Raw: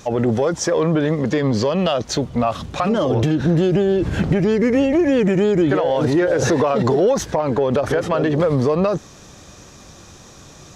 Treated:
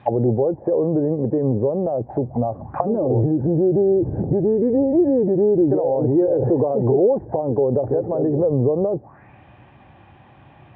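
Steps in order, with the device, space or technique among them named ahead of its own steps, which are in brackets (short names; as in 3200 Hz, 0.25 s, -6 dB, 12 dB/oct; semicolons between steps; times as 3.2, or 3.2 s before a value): envelope filter bass rig (envelope low-pass 460–3700 Hz down, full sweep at -18 dBFS; speaker cabinet 66–2000 Hz, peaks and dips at 120 Hz +7 dB, 180 Hz -4 dB, 460 Hz -9 dB, 810 Hz +9 dB, 1300 Hz -8 dB); gain -4.5 dB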